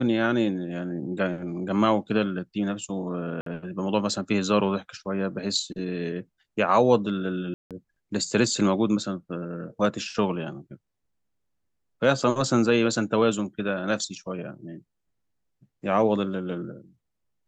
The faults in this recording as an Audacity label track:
3.410000	3.460000	gap 53 ms
7.540000	7.710000	gap 0.167 s

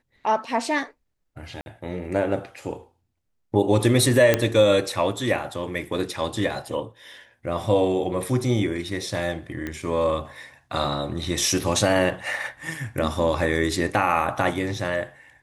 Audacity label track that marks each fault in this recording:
1.610000	1.660000	gap 51 ms
4.340000	4.340000	pop -4 dBFS
9.670000	9.670000	pop -17 dBFS

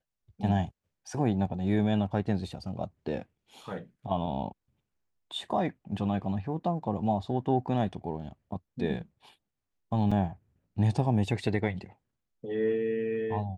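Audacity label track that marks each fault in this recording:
10.110000	10.120000	gap 5.3 ms

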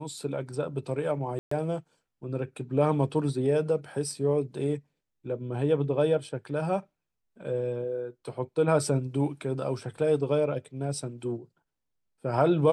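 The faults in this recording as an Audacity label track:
1.390000	1.510000	gap 0.124 s

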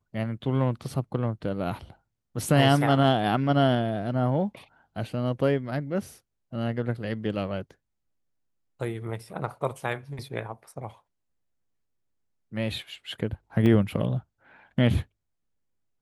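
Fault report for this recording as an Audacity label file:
13.660000	13.660000	gap 2.9 ms

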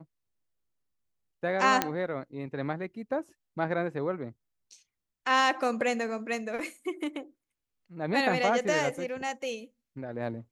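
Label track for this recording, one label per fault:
1.820000	1.820000	pop -8 dBFS

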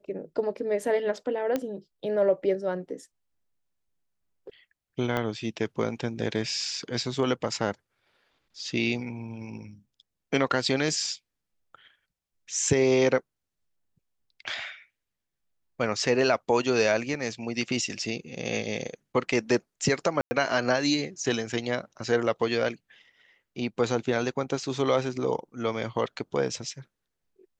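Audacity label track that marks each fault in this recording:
1.560000	1.560000	pop -14 dBFS
5.170000	5.170000	pop -15 dBFS
17.140000	17.140000	gap 3.2 ms
20.210000	20.310000	gap 0.1 s

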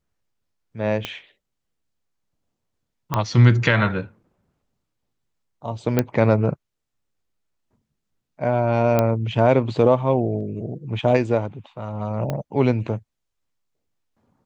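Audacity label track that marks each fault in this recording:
1.050000	1.050000	pop -12 dBFS
3.140000	3.140000	pop -8 dBFS
5.990000	5.990000	pop -5 dBFS
8.990000	8.990000	pop -6 dBFS
12.300000	12.300000	pop -13 dBFS

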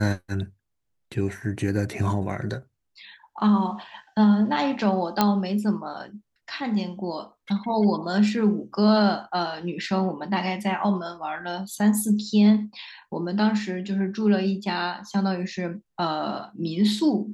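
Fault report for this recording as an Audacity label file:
5.210000	5.210000	pop -5 dBFS

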